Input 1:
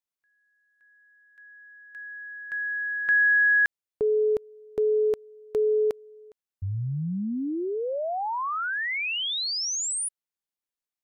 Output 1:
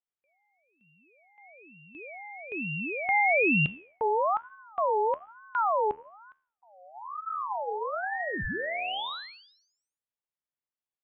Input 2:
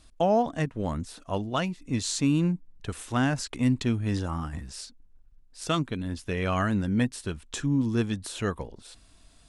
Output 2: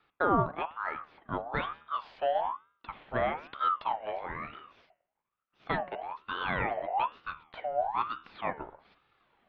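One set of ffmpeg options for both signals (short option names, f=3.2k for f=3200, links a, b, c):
-af "highpass=f=210:t=q:w=0.5412,highpass=f=210:t=q:w=1.307,lowpass=f=2.6k:t=q:w=0.5176,lowpass=f=2.6k:t=q:w=0.7071,lowpass=f=2.6k:t=q:w=1.932,afreqshift=-210,bandreject=f=77.27:t=h:w=4,bandreject=f=154.54:t=h:w=4,bandreject=f=231.81:t=h:w=4,bandreject=f=309.08:t=h:w=4,bandreject=f=386.35:t=h:w=4,bandreject=f=463.62:t=h:w=4,bandreject=f=540.89:t=h:w=4,bandreject=f=618.16:t=h:w=4,bandreject=f=695.43:t=h:w=4,bandreject=f=772.7:t=h:w=4,bandreject=f=849.97:t=h:w=4,bandreject=f=927.24:t=h:w=4,bandreject=f=1.00451k:t=h:w=4,bandreject=f=1.08178k:t=h:w=4,bandreject=f=1.15905k:t=h:w=4,bandreject=f=1.23632k:t=h:w=4,bandreject=f=1.31359k:t=h:w=4,bandreject=f=1.39086k:t=h:w=4,bandreject=f=1.46813k:t=h:w=4,bandreject=f=1.5454k:t=h:w=4,bandreject=f=1.62267k:t=h:w=4,bandreject=f=1.69994k:t=h:w=4,bandreject=f=1.77721k:t=h:w=4,bandreject=f=1.85448k:t=h:w=4,bandreject=f=1.93175k:t=h:w=4,bandreject=f=2.00902k:t=h:w=4,bandreject=f=2.08629k:t=h:w=4,bandreject=f=2.16356k:t=h:w=4,bandreject=f=2.24083k:t=h:w=4,bandreject=f=2.3181k:t=h:w=4,bandreject=f=2.39537k:t=h:w=4,aeval=exprs='val(0)*sin(2*PI*970*n/s+970*0.35/1.1*sin(2*PI*1.1*n/s))':c=same"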